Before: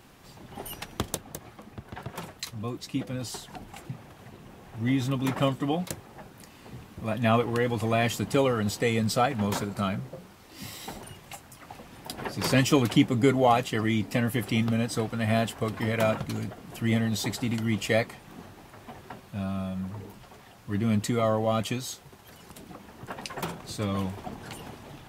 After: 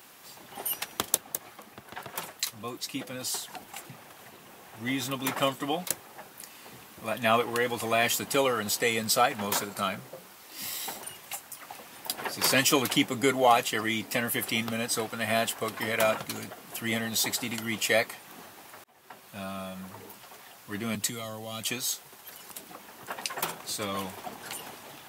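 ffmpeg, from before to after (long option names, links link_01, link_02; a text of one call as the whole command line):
ffmpeg -i in.wav -filter_complex "[0:a]asettb=1/sr,asplit=3[link_01][link_02][link_03];[link_01]atrim=end=20.954[link_04];[link_02]atrim=start=20.95:end=21.69,asetpts=PTS-STARTPTS,afade=type=in:duration=0.004:curve=qsin,afade=type=out:start_time=0.736:duration=0.004:curve=qsin,acrossover=split=200|3000[link_05][link_06][link_07];[link_06]acompressor=threshold=-38dB:ratio=6:attack=3.2:release=140:knee=2.83:detection=peak[link_08];[link_05][link_08][link_07]amix=inputs=3:normalize=0[link_09];[link_03]atrim=start=21.686[link_10];[link_04][link_09]acrossfade=duration=0.004:curve1=hsin:curve2=qsin[link_11];[link_11][link_10]acrossfade=duration=0.004:curve1=qsin:curve2=hsin,asplit=2[link_12][link_13];[link_12]atrim=end=18.84,asetpts=PTS-STARTPTS,afade=type=out:start_time=18.836:duration=0.004:curve=hsin[link_14];[link_13]atrim=start=18.84,asetpts=PTS-STARTPTS,afade=type=in:duration=0.54[link_15];[link_14][link_15]concat=n=2:v=0:a=1,highpass=frequency=750:poles=1,highshelf=frequency=10000:gain=11.5,volume=3.5dB" out.wav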